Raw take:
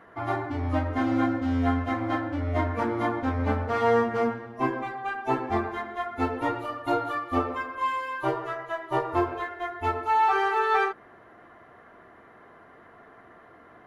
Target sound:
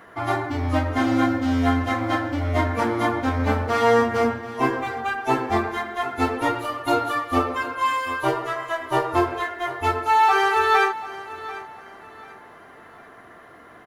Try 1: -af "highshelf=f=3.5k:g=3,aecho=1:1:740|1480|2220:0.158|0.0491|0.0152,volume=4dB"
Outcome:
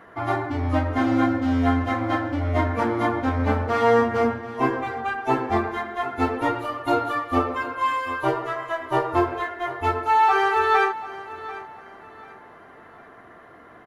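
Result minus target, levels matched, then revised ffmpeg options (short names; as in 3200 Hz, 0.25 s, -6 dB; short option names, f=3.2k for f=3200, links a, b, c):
8000 Hz band -7.0 dB
-af "highshelf=f=3.5k:g=12.5,aecho=1:1:740|1480|2220:0.158|0.0491|0.0152,volume=4dB"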